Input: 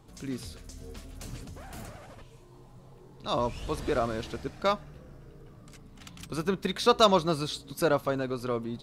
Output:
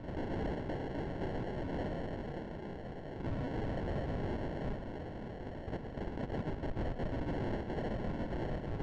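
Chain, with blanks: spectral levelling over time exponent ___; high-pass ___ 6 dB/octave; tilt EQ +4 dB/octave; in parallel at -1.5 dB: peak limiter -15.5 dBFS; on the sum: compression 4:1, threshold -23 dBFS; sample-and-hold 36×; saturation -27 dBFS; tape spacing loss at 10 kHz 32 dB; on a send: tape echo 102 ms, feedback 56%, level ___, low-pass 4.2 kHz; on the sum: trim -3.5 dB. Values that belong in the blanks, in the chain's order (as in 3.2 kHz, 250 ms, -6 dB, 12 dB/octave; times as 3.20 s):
0.6, 1.1 kHz, -13.5 dB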